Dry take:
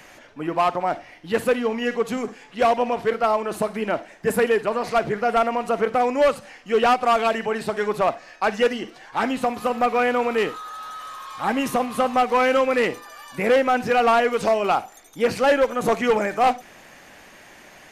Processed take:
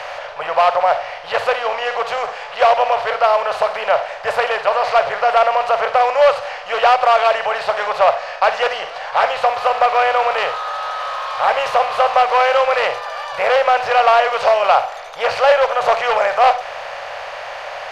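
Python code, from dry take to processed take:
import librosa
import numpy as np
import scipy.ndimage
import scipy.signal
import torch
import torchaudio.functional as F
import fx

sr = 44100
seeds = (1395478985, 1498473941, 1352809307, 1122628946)

y = fx.bin_compress(x, sr, power=0.6)
y = fx.curve_eq(y, sr, hz=(110.0, 270.0, 570.0, 1900.0, 4600.0, 11000.0), db=(0, -29, 10, 6, 9, -12))
y = y * librosa.db_to_amplitude(-5.0)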